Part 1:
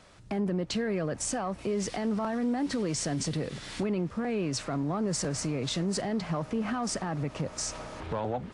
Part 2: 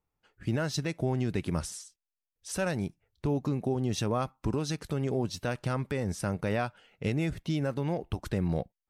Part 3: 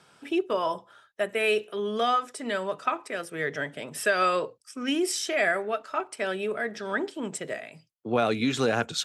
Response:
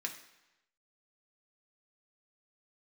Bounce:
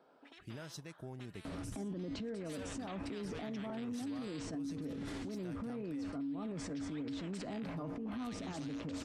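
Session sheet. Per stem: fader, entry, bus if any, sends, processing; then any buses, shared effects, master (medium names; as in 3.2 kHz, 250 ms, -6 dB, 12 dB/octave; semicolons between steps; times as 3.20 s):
-3.5 dB, 1.45 s, bus A, no send, low-pass 1.1 kHz 6 dB/octave; feedback comb 93 Hz, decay 0.35 s, harmonics odd, mix 70%; level flattener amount 70%
-18.0 dB, 0.00 s, muted 6.10–7.62 s, no bus, no send, treble shelf 6.8 kHz +9.5 dB
2.28 s -21.5 dB -> 2.56 s -9 dB -> 4.55 s -9 dB -> 4.94 s -21.5 dB -> 6.31 s -21.5 dB -> 6.72 s -11 dB, 0.00 s, bus A, no send, peaking EQ 4.3 kHz +6.5 dB 0.45 oct; auto-wah 550–1800 Hz, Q 2.6, up, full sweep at -29 dBFS; spectrum-flattening compressor 10:1
bus A: 0.0 dB, peaking EQ 270 Hz +12.5 dB 0.47 oct; compression, threshold -33 dBFS, peak gain reduction 10 dB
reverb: none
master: peak limiter -34.5 dBFS, peak gain reduction 9 dB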